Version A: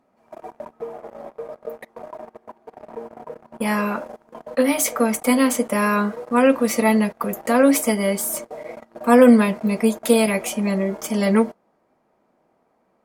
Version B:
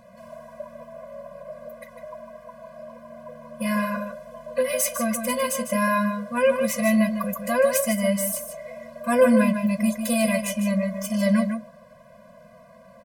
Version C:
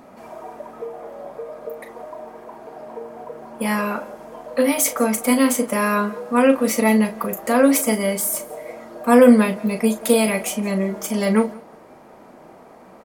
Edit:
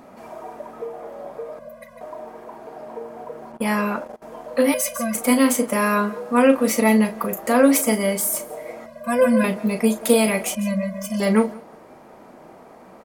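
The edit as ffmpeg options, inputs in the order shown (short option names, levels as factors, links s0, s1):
-filter_complex "[1:a]asplit=4[s0][s1][s2][s3];[2:a]asplit=6[s4][s5][s6][s7][s8][s9];[s4]atrim=end=1.592[s10];[s0]atrim=start=1.588:end=2.012[s11];[s5]atrim=start=2.008:end=3.522[s12];[0:a]atrim=start=3.518:end=4.222[s13];[s6]atrim=start=4.218:end=4.742[s14];[s1]atrim=start=4.738:end=5.152[s15];[s7]atrim=start=5.148:end=8.862[s16];[s2]atrim=start=8.858:end=9.442[s17];[s8]atrim=start=9.438:end=10.552[s18];[s3]atrim=start=10.548:end=11.202[s19];[s9]atrim=start=11.198[s20];[s10][s11]acrossfade=d=0.004:c1=hsin:c2=hsin[s21];[s21][s12]acrossfade=d=0.004:c1=hsin:c2=hsin[s22];[s22][s13]acrossfade=d=0.004:c1=hsin:c2=hsin[s23];[s23][s14]acrossfade=d=0.004:c1=hsin:c2=hsin[s24];[s24][s15]acrossfade=d=0.004:c1=hsin:c2=hsin[s25];[s25][s16]acrossfade=d=0.004:c1=hsin:c2=hsin[s26];[s26][s17]acrossfade=d=0.004:c1=hsin:c2=hsin[s27];[s27][s18]acrossfade=d=0.004:c1=hsin:c2=hsin[s28];[s28][s19]acrossfade=d=0.004:c1=hsin:c2=hsin[s29];[s29][s20]acrossfade=d=0.004:c1=hsin:c2=hsin"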